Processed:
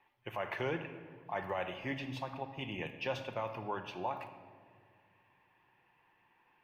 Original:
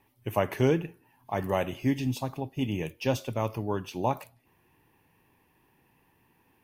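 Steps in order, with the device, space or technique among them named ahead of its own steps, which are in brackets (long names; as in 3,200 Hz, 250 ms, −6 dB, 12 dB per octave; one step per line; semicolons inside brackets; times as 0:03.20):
DJ mixer with the lows and highs turned down (three-way crossover with the lows and the highs turned down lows −15 dB, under 580 Hz, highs −23 dB, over 3,600 Hz; brickwall limiter −26 dBFS, peak gain reduction 11.5 dB)
rectangular room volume 2,800 cubic metres, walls mixed, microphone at 0.89 metres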